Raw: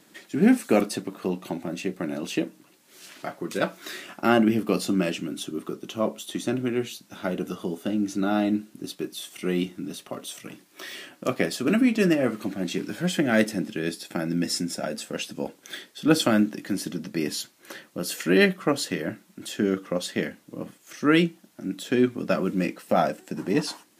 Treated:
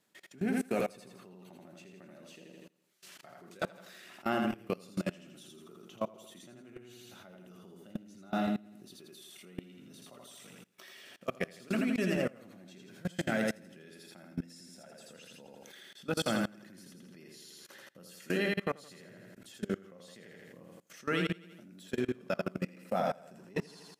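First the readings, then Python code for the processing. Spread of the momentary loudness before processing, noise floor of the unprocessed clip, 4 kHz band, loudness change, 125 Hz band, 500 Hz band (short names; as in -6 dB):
16 LU, -58 dBFS, -12.5 dB, -9.5 dB, -10.5 dB, -11.0 dB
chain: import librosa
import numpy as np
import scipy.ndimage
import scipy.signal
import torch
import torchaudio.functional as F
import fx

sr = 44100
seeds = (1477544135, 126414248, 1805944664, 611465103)

p1 = fx.peak_eq(x, sr, hz=300.0, db=-10.0, octaves=0.31)
p2 = p1 + fx.echo_feedback(p1, sr, ms=82, feedback_pct=47, wet_db=-3, dry=0)
p3 = fx.level_steps(p2, sr, step_db=23)
y = F.gain(torch.from_numpy(p3), -7.0).numpy()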